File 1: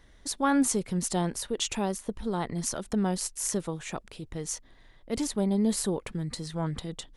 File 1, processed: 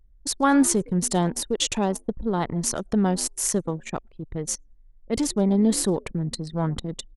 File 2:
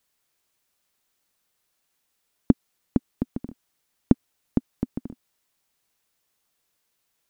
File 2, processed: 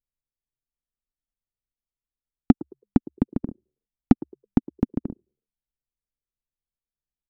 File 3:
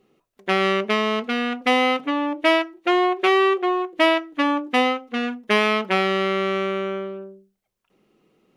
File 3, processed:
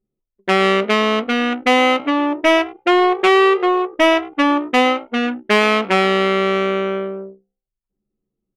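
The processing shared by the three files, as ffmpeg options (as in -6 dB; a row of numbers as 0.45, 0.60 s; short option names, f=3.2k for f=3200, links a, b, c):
-filter_complex "[0:a]acontrast=78,asplit=4[a][b][c][d];[b]adelay=108,afreqshift=66,volume=-20dB[e];[c]adelay=216,afreqshift=132,volume=-27.3dB[f];[d]adelay=324,afreqshift=198,volume=-34.7dB[g];[a][e][f][g]amix=inputs=4:normalize=0,anlmdn=63.1,volume=-1dB"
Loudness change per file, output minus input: +6.0, +3.0, +5.0 LU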